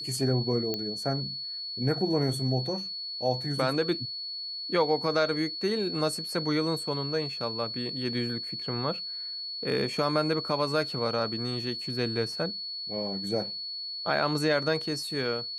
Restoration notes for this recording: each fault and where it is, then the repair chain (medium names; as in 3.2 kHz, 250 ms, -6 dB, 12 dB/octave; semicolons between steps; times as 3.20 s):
whine 4.4 kHz -34 dBFS
0.74 s: pop -16 dBFS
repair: de-click; band-stop 4.4 kHz, Q 30